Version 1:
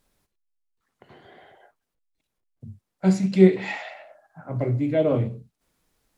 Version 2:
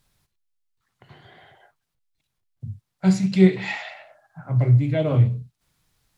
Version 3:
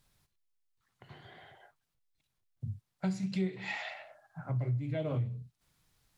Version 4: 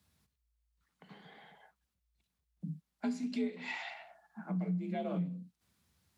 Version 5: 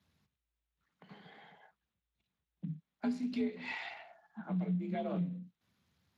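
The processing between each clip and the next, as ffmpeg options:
-af "equalizer=f=125:t=o:w=1:g=9,equalizer=f=250:t=o:w=1:g=-6,equalizer=f=500:t=o:w=1:g=-6,equalizer=f=4k:t=o:w=1:g=3,volume=2dB"
-af "acompressor=threshold=-28dB:ratio=4,volume=-4dB"
-af "afreqshift=56,volume=-2.5dB"
-ar 32000 -c:a libspeex -b:a 28k

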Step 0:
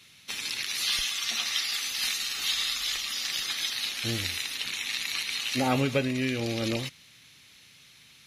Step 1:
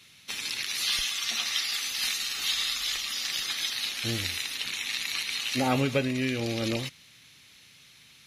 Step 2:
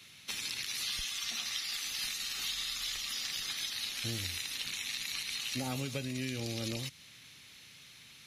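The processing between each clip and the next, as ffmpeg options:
-af anull
-filter_complex "[0:a]acrossover=split=190|4100[a][b][c];[a]acompressor=threshold=-40dB:ratio=4[d];[b]acompressor=threshold=-41dB:ratio=4[e];[c]acompressor=threshold=-39dB:ratio=4[f];[d][e][f]amix=inputs=3:normalize=0"

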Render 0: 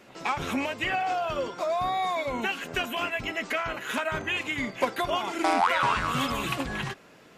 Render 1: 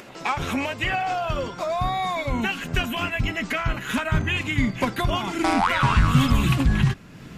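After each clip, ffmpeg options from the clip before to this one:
-af "acompressor=mode=upward:threshold=-41dB:ratio=2.5,asubboost=boost=9:cutoff=170,volume=3.5dB"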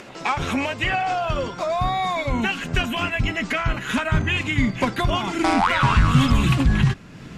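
-filter_complex "[0:a]lowpass=9.7k,asplit=2[a][b];[b]asoftclip=type=tanh:threshold=-15.5dB,volume=-10dB[c];[a][c]amix=inputs=2:normalize=0"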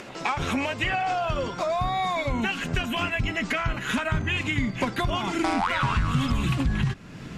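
-af "acompressor=threshold=-24dB:ratio=2.5"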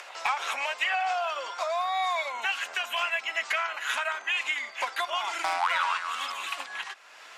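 -af "highpass=f=700:w=0.5412,highpass=f=700:w=1.3066,asoftclip=type=hard:threshold=-16.5dB"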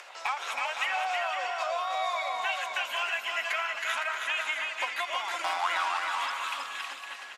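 -filter_complex "[0:a]equalizer=f=130:t=o:w=0.37:g=-15,asplit=2[a][b];[b]aecho=0:1:320|512|627.2|696.3|737.8:0.631|0.398|0.251|0.158|0.1[c];[a][c]amix=inputs=2:normalize=0,volume=-3.5dB"

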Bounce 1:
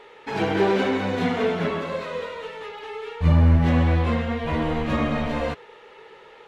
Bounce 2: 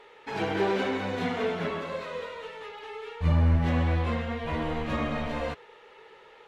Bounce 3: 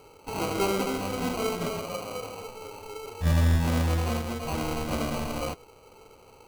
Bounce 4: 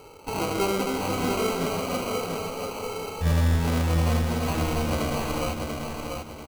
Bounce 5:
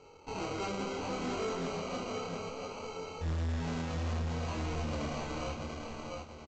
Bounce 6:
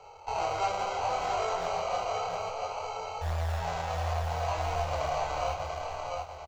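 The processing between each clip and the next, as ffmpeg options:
-af "equalizer=f=200:t=o:w=2.2:g=-3,volume=-4.5dB"
-af "acrusher=samples=25:mix=1:aa=0.000001"
-filter_complex "[0:a]asplit=2[a][b];[b]acompressor=threshold=-33dB:ratio=6,volume=0.5dB[c];[a][c]amix=inputs=2:normalize=0,aecho=1:1:689|1378|2067|2756:0.596|0.197|0.0649|0.0214,volume=-1.5dB"
-af "flanger=delay=22.5:depth=7:speed=0.66,aresample=16000,volume=25dB,asoftclip=hard,volume=-25dB,aresample=44100,volume=-6dB"
-filter_complex "[0:a]acrossover=split=140[a][b];[a]acrusher=samples=26:mix=1:aa=0.000001:lfo=1:lforange=15.6:lforate=2.6[c];[b]highpass=f=710:t=q:w=3.7[d];[c][d]amix=inputs=2:normalize=0,volume=3dB"

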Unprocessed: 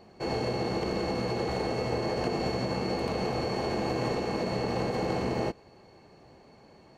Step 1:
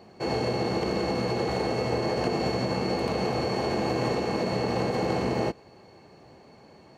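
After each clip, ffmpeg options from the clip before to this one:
-af "highpass=66,volume=3dB"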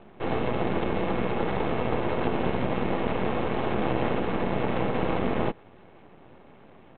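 -af "equalizer=f=240:t=o:w=0.77:g=3.5,aresample=8000,aeval=exprs='max(val(0),0)':c=same,aresample=44100,volume=3.5dB"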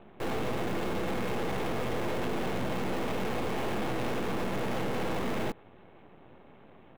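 -filter_complex "[0:a]aeval=exprs='(tanh(11.2*val(0)+0.55)-tanh(0.55))/11.2':c=same,asplit=2[a][b];[b]acrusher=bits=5:mix=0:aa=0.000001,volume=-5dB[c];[a][c]amix=inputs=2:normalize=0"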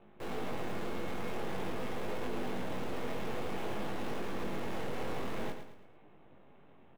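-filter_complex "[0:a]flanger=delay=19.5:depth=3.5:speed=0.49,asplit=2[a][b];[b]aecho=0:1:110|220|330|440:0.376|0.15|0.0601|0.0241[c];[a][c]amix=inputs=2:normalize=0,volume=-4dB"

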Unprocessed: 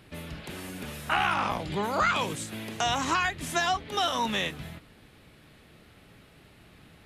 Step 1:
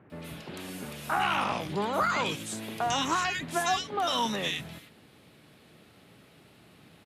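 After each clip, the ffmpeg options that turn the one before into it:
-filter_complex "[0:a]highpass=120,acrossover=split=1800[a][b];[b]adelay=100[c];[a][c]amix=inputs=2:normalize=0"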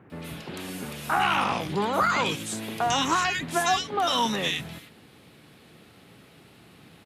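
-af "bandreject=f=610:w=15,volume=4dB"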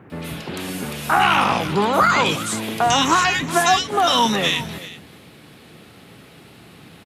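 -af "aecho=1:1:378:0.15,volume=7.5dB"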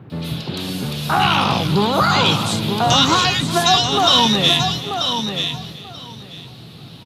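-af "equalizer=f=125:t=o:w=1:g=11,equalizer=f=2k:t=o:w=1:g=-7,equalizer=f=4k:t=o:w=1:g=12,equalizer=f=8k:t=o:w=1:g=-5,aecho=1:1:936|1872|2808:0.447|0.0715|0.0114"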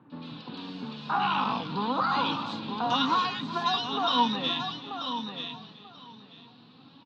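-af "highpass=220,equalizer=f=260:t=q:w=4:g=6,equalizer=f=380:t=q:w=4:g=-6,equalizer=f=620:t=q:w=4:g=-7,equalizer=f=1k:t=q:w=4:g=7,equalizer=f=2.1k:t=q:w=4:g=-7,equalizer=f=3.2k:t=q:w=4:g=-4,lowpass=f=4k:w=0.5412,lowpass=f=4k:w=1.3066,flanger=delay=3.3:depth=1.7:regen=58:speed=0.42:shape=triangular,volume=-7dB"

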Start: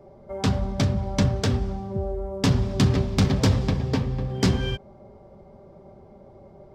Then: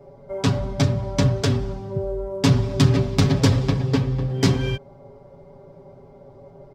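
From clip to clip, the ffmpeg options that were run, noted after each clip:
-af "aecho=1:1:7.2:0.94"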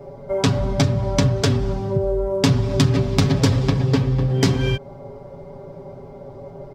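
-af "acompressor=threshold=-25dB:ratio=2.5,volume=8dB"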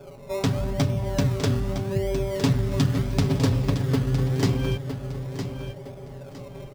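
-filter_complex "[0:a]asplit=2[a][b];[b]acrusher=samples=22:mix=1:aa=0.000001:lfo=1:lforange=13.2:lforate=0.8,volume=-4.5dB[c];[a][c]amix=inputs=2:normalize=0,aecho=1:1:960|1920|2880:0.355|0.106|0.0319,volume=-9dB"

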